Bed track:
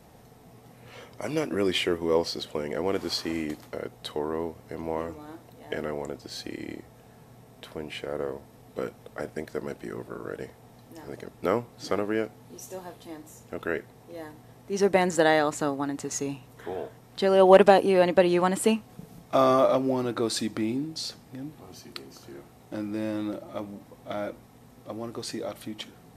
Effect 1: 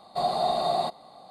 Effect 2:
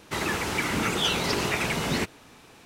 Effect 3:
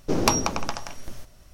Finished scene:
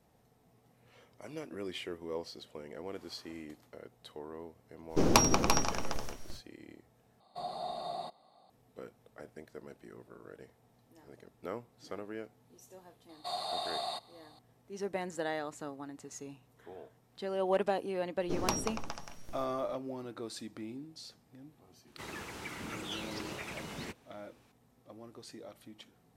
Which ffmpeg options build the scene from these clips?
-filter_complex "[3:a]asplit=2[a][b];[1:a]asplit=2[c][d];[0:a]volume=-15dB[e];[a]aecho=1:1:88|341:0.15|0.501[f];[d]tiltshelf=f=810:g=-9.5[g];[e]asplit=2[h][i];[h]atrim=end=7.204[j];[c]atrim=end=1.3,asetpts=PTS-STARTPTS,volume=-14dB[k];[i]atrim=start=8.496[l];[f]atrim=end=1.53,asetpts=PTS-STARTPTS,volume=-3.5dB,afade=t=in:d=0.05,afade=t=out:st=1.48:d=0.05,adelay=4880[m];[g]atrim=end=1.3,asetpts=PTS-STARTPTS,volume=-12dB,afade=t=in:d=0.004:c=hsin,afade=t=out:st=1.296:d=0.004:c=hsin,adelay=13090[n];[b]atrim=end=1.53,asetpts=PTS-STARTPTS,volume=-12dB,afade=t=in:d=0.004:c=hsin,afade=t=out:st=1.526:d=0.004:c=hsin,adelay=18210[o];[2:a]atrim=end=2.65,asetpts=PTS-STARTPTS,volume=-16dB,afade=t=in:d=0.004:c=hsin,afade=t=out:st=2.646:d=0.004:c=hsin,adelay=21870[p];[j][k]acrossfade=d=0.004:c1=hsin:c2=hsin[q];[q][l]acrossfade=d=0.004:c1=hsin:c2=hsin[r];[r][m][n][o][p]amix=inputs=5:normalize=0"

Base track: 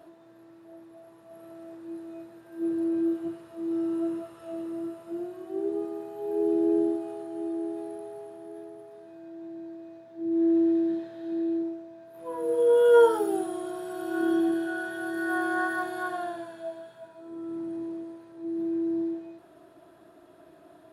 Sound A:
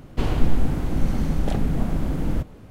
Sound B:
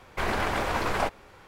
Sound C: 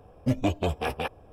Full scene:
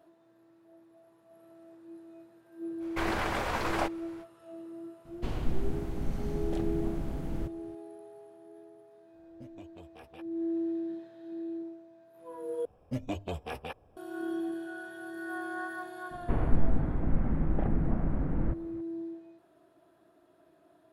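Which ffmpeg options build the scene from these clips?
-filter_complex "[1:a]asplit=2[a][b];[3:a]asplit=2[c][d];[0:a]volume=-9.5dB[e];[c]acompressor=threshold=-27dB:ratio=5:attack=0.25:release=619:knee=1:detection=rms[f];[d]bandreject=f=50:t=h:w=6,bandreject=f=100:t=h:w=6[g];[b]lowpass=f=1.9k:w=0.5412,lowpass=f=1.9k:w=1.3066[h];[e]asplit=2[i][j];[i]atrim=end=12.654[k];[g]atrim=end=1.32,asetpts=PTS-STARTPTS,volume=-9.5dB[l];[j]atrim=start=13.966[m];[2:a]atrim=end=1.47,asetpts=PTS-STARTPTS,volume=-4dB,afade=t=in:d=0.05,afade=t=out:st=1.42:d=0.05,adelay=2790[n];[a]atrim=end=2.7,asetpts=PTS-STARTPTS,volume=-11.5dB,afade=t=in:d=0.004:c=hsin,afade=t=out:st=2.696:d=0.004:c=hsin,adelay=222705S[o];[f]atrim=end=1.32,asetpts=PTS-STARTPTS,volume=-16.5dB,afade=t=in:d=0.004:c=hsin,afade=t=out:st=1.316:d=0.004:c=hsin,adelay=403074S[p];[h]atrim=end=2.7,asetpts=PTS-STARTPTS,volume=-6dB,afade=t=in:d=0.004:c=hsin,afade=t=out:st=2.696:d=0.004:c=hsin,adelay=16110[q];[k][l]acrossfade=d=0.004:c1=hsin:c2=hsin[r];[r][m]acrossfade=d=0.004:c1=hsin:c2=hsin[s];[s][n][o][p][q]amix=inputs=5:normalize=0"

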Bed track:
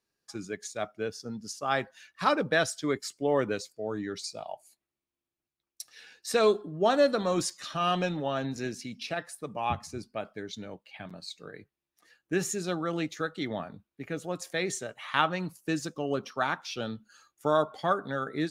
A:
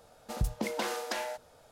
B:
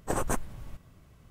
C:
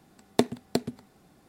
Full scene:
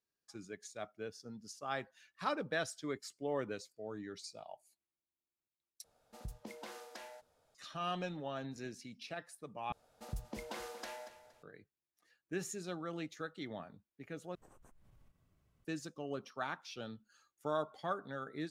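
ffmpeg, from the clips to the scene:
-filter_complex "[1:a]asplit=2[a][b];[0:a]volume=-11dB[c];[b]aecho=1:1:234|468|702:0.211|0.055|0.0143[d];[2:a]acompressor=threshold=-42dB:ratio=6:attack=3.2:release=140:knee=1:detection=peak[e];[c]asplit=4[f][g][h][i];[f]atrim=end=5.844[j];[a]atrim=end=1.71,asetpts=PTS-STARTPTS,volume=-15.5dB[k];[g]atrim=start=7.546:end=9.724[l];[d]atrim=end=1.71,asetpts=PTS-STARTPTS,volume=-11.5dB[m];[h]atrim=start=11.426:end=14.354[n];[e]atrim=end=1.3,asetpts=PTS-STARTPTS,volume=-18dB[o];[i]atrim=start=15.646[p];[j][k]acrossfade=d=0.004:c1=hsin:c2=hsin[q];[q][l]acrossfade=d=0.004:c1=hsin:c2=hsin[r];[r][m]acrossfade=d=0.004:c1=hsin:c2=hsin[s];[s][n]acrossfade=d=0.004:c1=hsin:c2=hsin[t];[t][o]acrossfade=d=0.004:c1=hsin:c2=hsin[u];[u][p]acrossfade=d=0.004:c1=hsin:c2=hsin"

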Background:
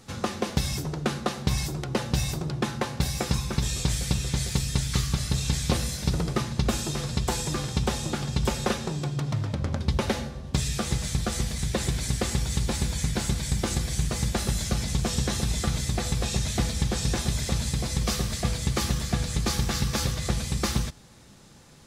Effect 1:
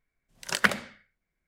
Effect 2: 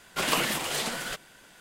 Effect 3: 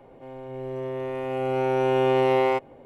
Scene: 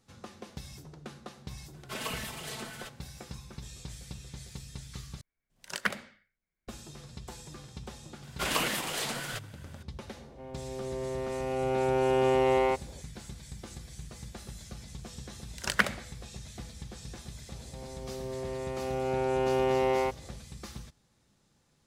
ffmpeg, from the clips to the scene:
-filter_complex "[2:a]asplit=2[a][b];[1:a]asplit=2[c][d];[3:a]asplit=2[e][f];[0:a]volume=-17.5dB[g];[a]aecho=1:1:4.6:0.8[h];[g]asplit=2[i][j];[i]atrim=end=5.214[k];[c]atrim=end=1.47,asetpts=PTS-STARTPTS,volume=-8dB[l];[j]atrim=start=6.676[m];[h]atrim=end=1.6,asetpts=PTS-STARTPTS,volume=-13dB,afade=t=in:d=0.004:c=hsin,afade=t=out:st=1.596:d=0.004:c=hsin,adelay=1730[n];[b]atrim=end=1.6,asetpts=PTS-STARTPTS,volume=-3.5dB,afade=t=in:d=0.004:c=hsin,afade=t=out:st=1.596:d=0.004:c=hsin,adelay=8230[o];[e]atrim=end=2.85,asetpts=PTS-STARTPTS,volume=-4dB,afade=t=in:d=0.004:c=hsin,afade=t=out:st=2.846:d=0.004:c=hsin,adelay=10170[p];[d]atrim=end=1.47,asetpts=PTS-STARTPTS,volume=-3dB,afade=t=in:d=0.004:c=hsin,afade=t=out:st=1.466:d=0.004:c=hsin,adelay=15150[q];[f]atrim=end=2.85,asetpts=PTS-STARTPTS,volume=-6dB,afade=t=in:d=0.004:c=hsin,afade=t=out:st=2.846:d=0.004:c=hsin,adelay=17520[r];[k][l]acrossfade=d=0.004:c1=hsin:c2=hsin[s];[s][m]acrossfade=d=0.004:c1=hsin:c2=hsin[t];[t][n][o][p][q][r]amix=inputs=6:normalize=0"

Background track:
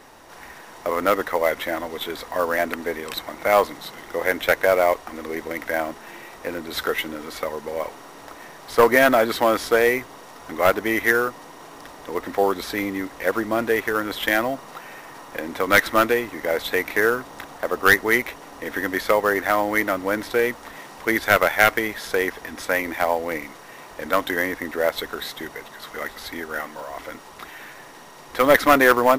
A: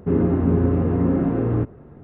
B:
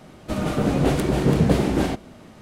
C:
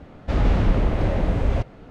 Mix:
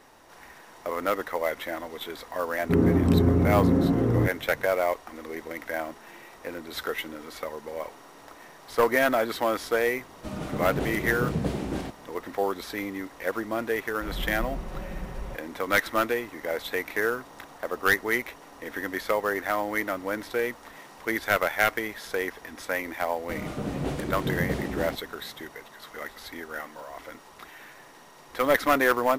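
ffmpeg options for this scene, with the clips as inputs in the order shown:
-filter_complex "[2:a]asplit=2[a][b];[0:a]volume=-7dB[c];[3:a]aecho=1:1:5.4:0.77[d];[1:a]atrim=end=2.03,asetpts=PTS-STARTPTS,volume=-2dB,afade=t=in:d=0.004:c=hsin,afade=t=out:st=2.026:d=0.004:c=hsin,adelay=2630[e];[a]atrim=end=2.41,asetpts=PTS-STARTPTS,volume=-10dB,afade=t=in:d=0.004:c=hsin,afade=t=out:st=2.406:d=0.004:c=hsin,adelay=9950[f];[d]atrim=end=1.9,asetpts=PTS-STARTPTS,volume=-16.5dB,afade=t=in:d=0.004:c=hsin,afade=t=out:st=1.896:d=0.004:c=hsin,adelay=13730[g];[b]atrim=end=2.41,asetpts=PTS-STARTPTS,volume=-10.5dB,afade=t=in:d=0.004:c=hsin,afade=t=out:st=2.406:d=0.004:c=hsin,adelay=23000[h];[c][e][f][g][h]amix=inputs=5:normalize=0"

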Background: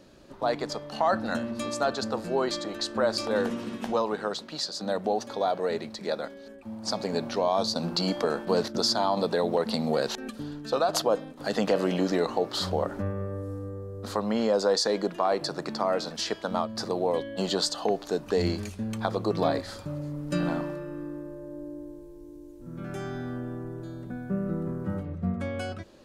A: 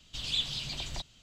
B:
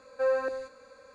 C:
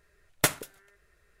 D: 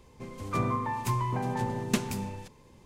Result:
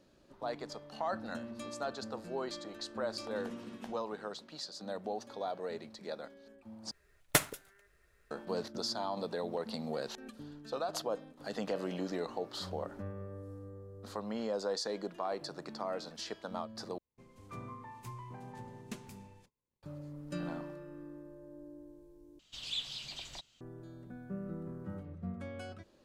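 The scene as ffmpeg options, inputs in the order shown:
-filter_complex "[0:a]volume=-11.5dB[a];[3:a]acrusher=bits=5:mode=log:mix=0:aa=0.000001[b];[4:a]agate=range=-21dB:threshold=-52dB:ratio=16:release=100:detection=peak[c];[1:a]lowshelf=f=210:g=-11.5[d];[a]asplit=4[e][f][g][h];[e]atrim=end=6.914[i];[b]atrim=end=1.4,asetpts=PTS-STARTPTS,volume=-3.5dB[j];[f]atrim=start=8.306:end=16.984[k];[c]atrim=end=2.85,asetpts=PTS-STARTPTS,volume=-17dB[l];[g]atrim=start=19.826:end=22.394[m];[d]atrim=end=1.22,asetpts=PTS-STARTPTS,volume=-6.5dB[n];[h]atrim=start=23.606[o];[i][j]acrossfade=d=0.004:c1=hsin:c2=hsin[p];[p][k]acrossfade=d=0.004:c1=hsin:c2=hsin[q];[q][l]acrossfade=d=0.004:c1=hsin:c2=hsin[r];[r][m]acrossfade=d=0.004:c1=hsin:c2=hsin[s];[s][n]acrossfade=d=0.004:c1=hsin:c2=hsin[t];[t][o]acrossfade=d=0.004:c1=hsin:c2=hsin"

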